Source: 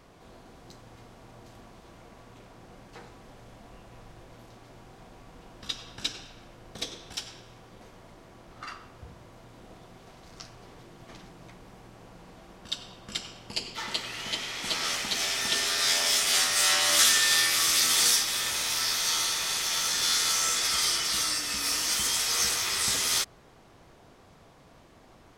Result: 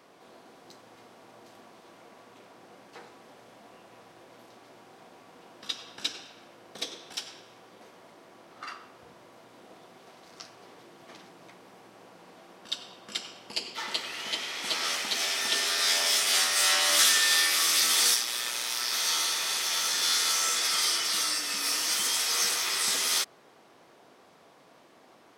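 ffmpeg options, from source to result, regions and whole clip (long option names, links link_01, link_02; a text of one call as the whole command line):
ffmpeg -i in.wav -filter_complex "[0:a]asettb=1/sr,asplit=3[link_01][link_02][link_03];[link_01]atrim=end=18.144[link_04];[link_02]atrim=start=18.14:end=18.93,asetpts=PTS-STARTPTS,afade=type=in:duration=0.004:curve=qsin,afade=type=out:start_time=0.786:duration=0.004:curve=qsin,asoftclip=type=hard:threshold=-16.5dB,tremolo=f=120:d=0.571[link_05];[link_03]atrim=start=18.926[link_06];[link_04][link_05]acrossfade=duration=0.004:curve1=hsin:curve2=qsin[link_07];[link_07][link_06]acrossfade=duration=0.004:curve1=qsin:curve2=hsin,highpass=270,equalizer=frequency=7000:width=3.6:gain=-2.5,acontrast=73,volume=-6.5dB" out.wav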